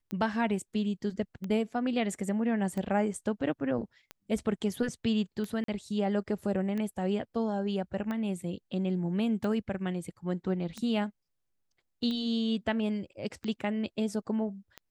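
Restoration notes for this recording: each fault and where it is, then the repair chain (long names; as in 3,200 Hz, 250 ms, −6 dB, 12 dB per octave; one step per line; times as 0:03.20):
scratch tick 45 rpm −24 dBFS
0:05.64–0:05.68: drop-out 43 ms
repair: click removal
repair the gap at 0:05.64, 43 ms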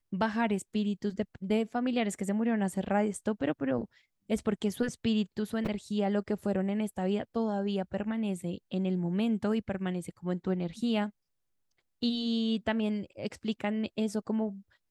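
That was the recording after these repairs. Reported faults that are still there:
none of them is left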